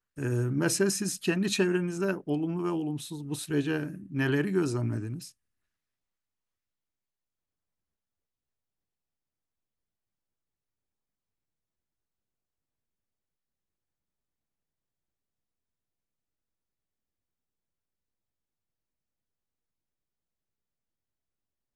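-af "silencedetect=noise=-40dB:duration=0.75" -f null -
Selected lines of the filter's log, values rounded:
silence_start: 5.29
silence_end: 21.75 | silence_duration: 16.46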